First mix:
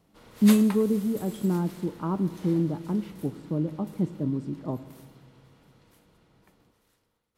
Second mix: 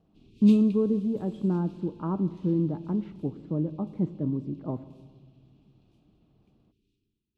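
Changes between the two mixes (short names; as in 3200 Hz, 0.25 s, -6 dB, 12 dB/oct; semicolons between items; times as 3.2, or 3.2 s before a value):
background: add Chebyshev band-stop 400–2500 Hz, order 5; master: add tape spacing loss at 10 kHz 26 dB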